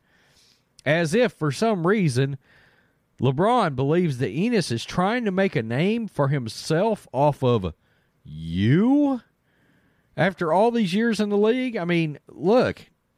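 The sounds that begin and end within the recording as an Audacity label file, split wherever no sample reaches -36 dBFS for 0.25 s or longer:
0.790000	2.360000	sound
3.200000	7.710000	sound
8.260000	9.180000	sound
10.170000	12.820000	sound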